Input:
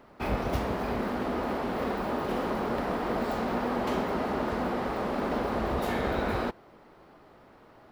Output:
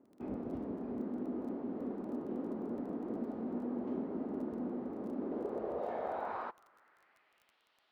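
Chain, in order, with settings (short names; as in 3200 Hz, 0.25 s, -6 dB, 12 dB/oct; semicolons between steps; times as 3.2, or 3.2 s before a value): band-pass sweep 280 Hz -> 3400 Hz, 5.16–7.62; crackle 18/s -48 dBFS; gain -3 dB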